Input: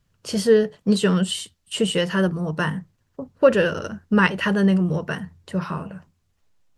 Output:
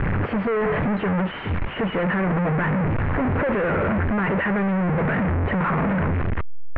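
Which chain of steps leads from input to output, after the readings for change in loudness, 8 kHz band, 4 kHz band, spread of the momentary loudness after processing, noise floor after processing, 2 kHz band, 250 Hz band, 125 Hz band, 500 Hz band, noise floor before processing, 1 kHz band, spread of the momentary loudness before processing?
-1.0 dB, under -40 dB, -11.5 dB, 4 LU, -31 dBFS, +1.0 dB, -0.5 dB, +4.0 dB, -3.0 dB, -69 dBFS, +4.5 dB, 13 LU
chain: infinite clipping; steep low-pass 2200 Hz 36 dB/oct; gain +1.5 dB

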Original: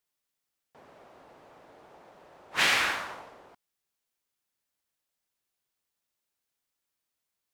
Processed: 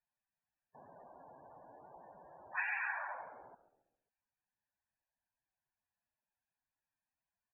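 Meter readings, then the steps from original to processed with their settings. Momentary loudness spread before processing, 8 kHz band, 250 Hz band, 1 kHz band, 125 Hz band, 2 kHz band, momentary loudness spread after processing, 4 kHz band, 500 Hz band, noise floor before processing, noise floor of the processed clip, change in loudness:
18 LU, under -35 dB, -17.5 dB, -9.0 dB, under -15 dB, -10.0 dB, 21 LU, under -40 dB, -11.0 dB, -85 dBFS, under -85 dBFS, -13.0 dB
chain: LPF 2500 Hz 24 dB/oct; comb 1.2 ms, depth 38%; compressor, threshold -30 dBFS, peak gain reduction 8.5 dB; loudest bins only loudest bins 32; on a send: frequency-shifting echo 0.135 s, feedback 46%, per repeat -66 Hz, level -15.5 dB; on the sum: gain -2.5 dB

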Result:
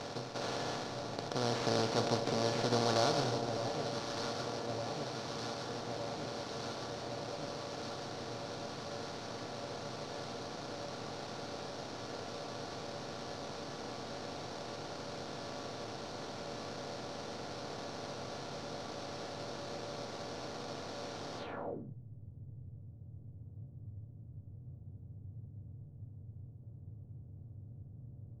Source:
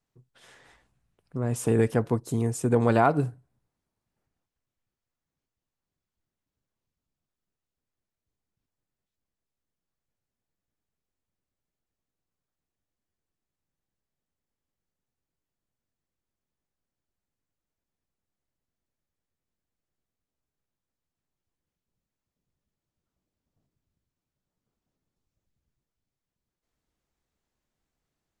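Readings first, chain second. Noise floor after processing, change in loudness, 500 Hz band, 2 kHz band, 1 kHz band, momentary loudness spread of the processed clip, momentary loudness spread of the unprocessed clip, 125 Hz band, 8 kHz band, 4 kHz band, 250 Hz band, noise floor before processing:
-52 dBFS, -14.5 dB, -4.0 dB, -1.5 dB, -3.0 dB, 18 LU, 10 LU, -8.0 dB, -0.5 dB, +16.0 dB, -7.5 dB, under -85 dBFS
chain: per-bin compression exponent 0.2; resonator 570 Hz, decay 0.39 s, mix 80%; sample-rate reducer 5000 Hz, jitter 20%; echo with dull and thin repeats by turns 0.606 s, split 860 Hz, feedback 85%, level -7 dB; low-pass sweep 5200 Hz -> 100 Hz, 21.38–21.95; gain -3 dB

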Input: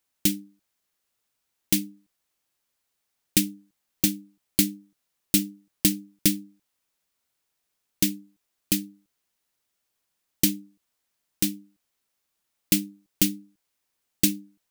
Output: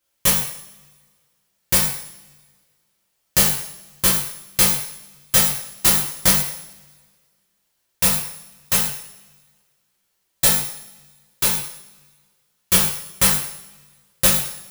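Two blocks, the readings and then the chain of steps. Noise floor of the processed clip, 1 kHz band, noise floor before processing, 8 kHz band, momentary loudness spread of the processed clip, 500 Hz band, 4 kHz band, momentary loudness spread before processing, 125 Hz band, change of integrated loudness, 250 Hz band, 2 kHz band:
-71 dBFS, n/a, -79 dBFS, +9.5 dB, 15 LU, +11.0 dB, +8.0 dB, 15 LU, +5.0 dB, +7.5 dB, -4.0 dB, +12.0 dB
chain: FFT order left unsorted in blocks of 128 samples; two-slope reverb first 0.63 s, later 1.7 s, from -20 dB, DRR -7.5 dB; gain -1 dB

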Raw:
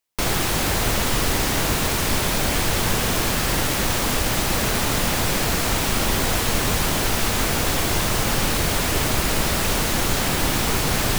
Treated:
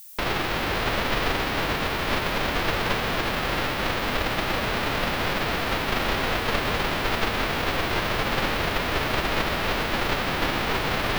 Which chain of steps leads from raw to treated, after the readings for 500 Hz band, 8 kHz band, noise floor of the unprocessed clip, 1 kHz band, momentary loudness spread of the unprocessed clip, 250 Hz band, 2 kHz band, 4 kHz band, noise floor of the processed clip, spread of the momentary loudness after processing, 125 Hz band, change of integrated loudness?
-1.5 dB, -17.0 dB, -23 dBFS, -0.5 dB, 0 LU, -4.5 dB, -0.5 dB, -4.0 dB, -28 dBFS, 1 LU, -6.5 dB, -4.5 dB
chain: spectral whitening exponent 0.3; air absorption 330 m; added noise violet -47 dBFS; gain +2.5 dB

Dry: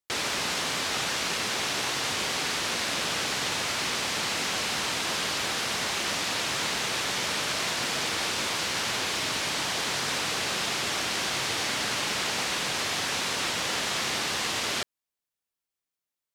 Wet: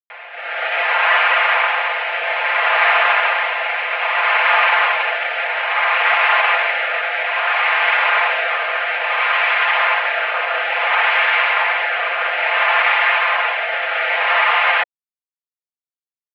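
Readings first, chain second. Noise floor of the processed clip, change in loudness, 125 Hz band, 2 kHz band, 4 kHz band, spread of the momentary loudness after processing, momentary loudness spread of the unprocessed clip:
under -85 dBFS, +11.5 dB, under -40 dB, +16.0 dB, +2.5 dB, 6 LU, 0 LU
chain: comb 5.5 ms, depth 79%; limiter -22.5 dBFS, peak gain reduction 8.5 dB; AGC gain up to 16 dB; rotary speaker horn 0.6 Hz; crossover distortion -42 dBFS; mistuned SSB +130 Hz 510–2400 Hz; gain +7 dB

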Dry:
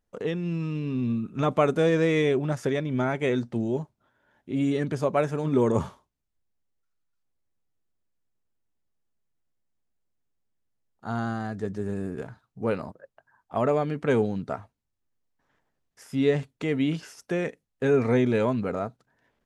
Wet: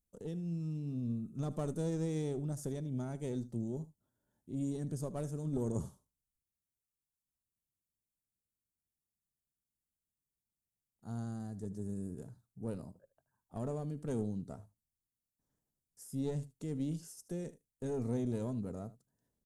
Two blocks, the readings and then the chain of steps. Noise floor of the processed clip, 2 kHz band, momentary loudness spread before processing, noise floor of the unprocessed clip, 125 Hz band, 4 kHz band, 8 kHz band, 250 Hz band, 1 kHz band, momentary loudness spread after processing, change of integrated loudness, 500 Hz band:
under -85 dBFS, -26.5 dB, 12 LU, -80 dBFS, -8.5 dB, under -15 dB, n/a, -11.5 dB, -20.0 dB, 11 LU, -13.0 dB, -16.5 dB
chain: one diode to ground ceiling -23.5 dBFS; EQ curve 180 Hz 0 dB, 2300 Hz -21 dB, 8800 Hz +9 dB; echo 76 ms -17.5 dB; gain -7 dB

